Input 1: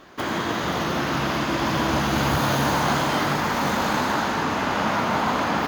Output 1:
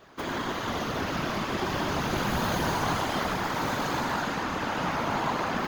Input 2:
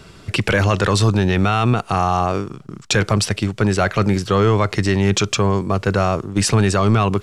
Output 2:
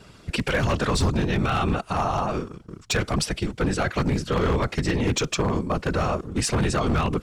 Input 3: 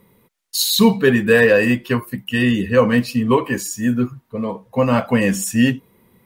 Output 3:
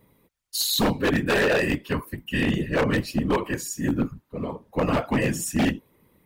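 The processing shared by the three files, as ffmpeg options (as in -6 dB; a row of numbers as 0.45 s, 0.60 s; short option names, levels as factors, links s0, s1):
-af "afftfilt=real='hypot(re,im)*cos(2*PI*random(0))':imag='hypot(re,im)*sin(2*PI*random(1))':win_size=512:overlap=0.75,aeval=exprs='0.178*(abs(mod(val(0)/0.178+3,4)-2)-1)':c=same"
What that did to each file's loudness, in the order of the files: -6.0 LU, -6.5 LU, -7.5 LU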